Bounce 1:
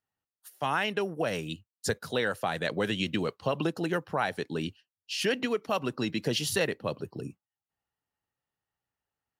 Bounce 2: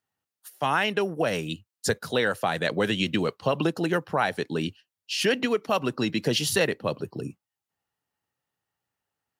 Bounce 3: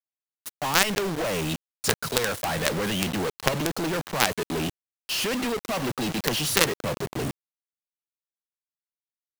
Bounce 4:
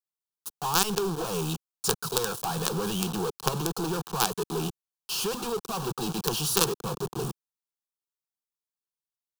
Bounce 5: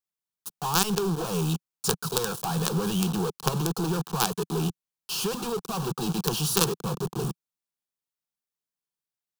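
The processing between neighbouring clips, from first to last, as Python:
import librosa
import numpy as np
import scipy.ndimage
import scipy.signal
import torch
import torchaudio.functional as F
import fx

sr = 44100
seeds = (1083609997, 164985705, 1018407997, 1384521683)

y1 = scipy.signal.sosfilt(scipy.signal.butter(2, 81.0, 'highpass', fs=sr, output='sos'), x)
y1 = y1 * 10.0 ** (4.5 / 20.0)
y2 = fx.quant_companded(y1, sr, bits=2)
y2 = y2 * 10.0 ** (-1.0 / 20.0)
y3 = fx.fixed_phaser(y2, sr, hz=400.0, stages=8)
y4 = fx.peak_eq(y3, sr, hz=170.0, db=6.0, octaves=0.8)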